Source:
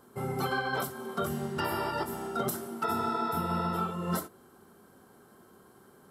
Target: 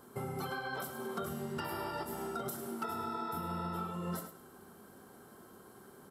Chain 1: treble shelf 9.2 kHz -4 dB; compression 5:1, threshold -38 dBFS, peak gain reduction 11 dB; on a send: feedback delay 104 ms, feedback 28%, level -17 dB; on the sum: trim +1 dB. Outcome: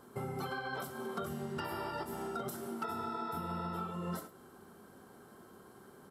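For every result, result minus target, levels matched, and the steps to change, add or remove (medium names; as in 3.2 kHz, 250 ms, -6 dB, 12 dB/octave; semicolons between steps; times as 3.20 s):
echo-to-direct -6.5 dB; 8 kHz band -3.0 dB
change: feedback delay 104 ms, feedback 28%, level -10.5 dB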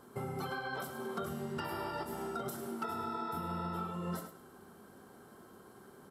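8 kHz band -3.0 dB
change: treble shelf 9.2 kHz +3 dB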